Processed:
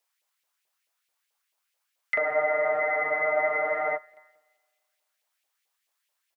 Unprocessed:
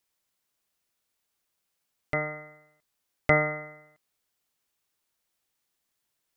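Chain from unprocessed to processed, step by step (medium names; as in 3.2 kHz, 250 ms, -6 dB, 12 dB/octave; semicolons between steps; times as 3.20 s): LFO high-pass saw up 4.6 Hz 510–2700 Hz; on a send: feedback delay 219 ms, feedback 49%, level -19 dB; on the sum: spring tank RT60 1.7 s, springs 42 ms, chirp 25 ms, DRR 15 dB; spectral freeze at 2.20 s, 1.76 s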